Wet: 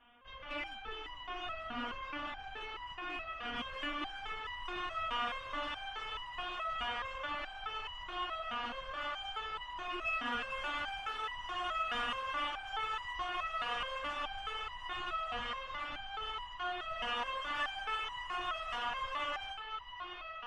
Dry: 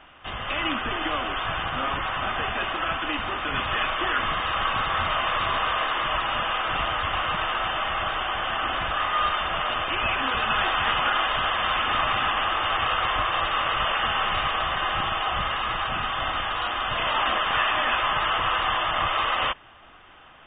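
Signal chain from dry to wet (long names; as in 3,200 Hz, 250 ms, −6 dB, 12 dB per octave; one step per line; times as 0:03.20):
low-shelf EQ 360 Hz +4 dB
feedback delay with all-pass diffusion 854 ms, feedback 57%, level −7 dB
harmonic generator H 8 −29 dB, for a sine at −8.5 dBFS
step-sequenced resonator 4.7 Hz 240–970 Hz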